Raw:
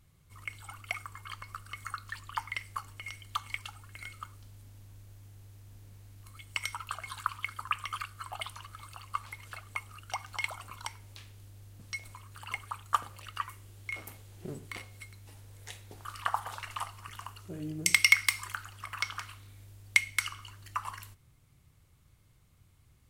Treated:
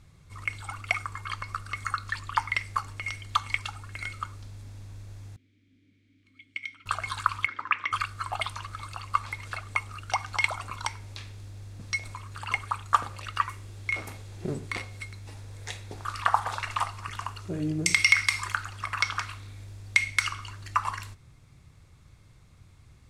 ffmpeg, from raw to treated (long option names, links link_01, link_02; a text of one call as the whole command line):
ffmpeg -i in.wav -filter_complex "[0:a]asettb=1/sr,asplit=3[link_01][link_02][link_03];[link_01]atrim=end=5.364[link_04];[link_02]atrim=start=5.36:end=6.86,asetpts=PTS-STARTPTS,afade=type=in:duration=0.004:curve=qsin,afade=type=out:start_time=1.496:duration=0.004:curve=qsin,asplit=3[link_05][link_06][link_07];[link_05]bandpass=frequency=270:width_type=q:width=8,volume=0dB[link_08];[link_06]bandpass=frequency=2290:width_type=q:width=8,volume=-6dB[link_09];[link_07]bandpass=frequency=3010:width_type=q:width=8,volume=-9dB[link_10];[link_08][link_09][link_10]amix=inputs=3:normalize=0[link_11];[link_03]atrim=start=6.856[link_12];[link_04][link_11]acrossfade=duration=0.004:curve1=hsin:curve2=qsin[link_13];[link_13][link_12]acrossfade=duration=0.004:curve1=qsin:curve2=hsin,asplit=3[link_14][link_15][link_16];[link_14]afade=type=out:start_time=7.45:duration=0.02[link_17];[link_15]highpass=260,equalizer=frequency=300:width_type=q:width=4:gain=7,equalizer=frequency=730:width_type=q:width=4:gain=-7,equalizer=frequency=1200:width_type=q:width=4:gain=-5,equalizer=frequency=2000:width_type=q:width=4:gain=6,equalizer=frequency=3000:width_type=q:width=4:gain=-4,equalizer=frequency=4400:width_type=q:width=4:gain=-9,lowpass=frequency=4500:width=0.5412,lowpass=frequency=4500:width=1.3066,afade=type=in:start_time=7.45:duration=0.02,afade=type=out:start_time=7.91:duration=0.02[link_18];[link_16]afade=type=in:start_time=7.91:duration=0.02[link_19];[link_17][link_18][link_19]amix=inputs=3:normalize=0,lowpass=7200,bandreject=frequency=3000:width=11,alimiter=level_in=13.5dB:limit=-1dB:release=50:level=0:latency=1,volume=-4.5dB" out.wav